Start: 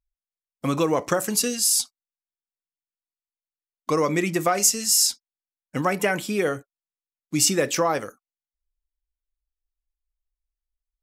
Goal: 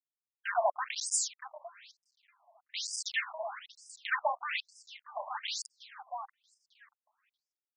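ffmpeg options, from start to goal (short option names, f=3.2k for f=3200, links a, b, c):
-filter_complex "[0:a]agate=range=-33dB:threshold=-33dB:ratio=3:detection=peak,acrusher=bits=3:mix=0:aa=0.000001,asetrate=62622,aresample=44100,asoftclip=type=tanh:threshold=-22.5dB,asplit=2[a][b];[b]adelay=635,lowpass=f=2.7k:p=1,volume=-11.5dB,asplit=2[c][d];[d]adelay=635,lowpass=f=2.7k:p=1,volume=0.25,asplit=2[e][f];[f]adelay=635,lowpass=f=2.7k:p=1,volume=0.25[g];[c][e][g]amix=inputs=3:normalize=0[h];[a][h]amix=inputs=2:normalize=0,afftfilt=real='re*between(b*sr/1024,770*pow(6900/770,0.5+0.5*sin(2*PI*1.1*pts/sr))/1.41,770*pow(6900/770,0.5+0.5*sin(2*PI*1.1*pts/sr))*1.41)':imag='im*between(b*sr/1024,770*pow(6900/770,0.5+0.5*sin(2*PI*1.1*pts/sr))/1.41,770*pow(6900/770,0.5+0.5*sin(2*PI*1.1*pts/sr))*1.41)':win_size=1024:overlap=0.75,volume=3dB"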